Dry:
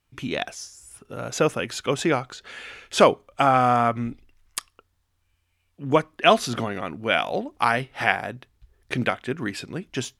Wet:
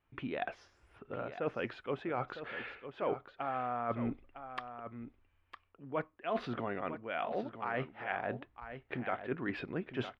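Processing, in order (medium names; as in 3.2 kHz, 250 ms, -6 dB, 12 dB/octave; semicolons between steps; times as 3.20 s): tone controls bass -7 dB, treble -12 dB; reverse; compression 12:1, threshold -32 dBFS, peak gain reduction 22.5 dB; reverse; distance through air 360 m; delay 956 ms -10.5 dB; trim +1 dB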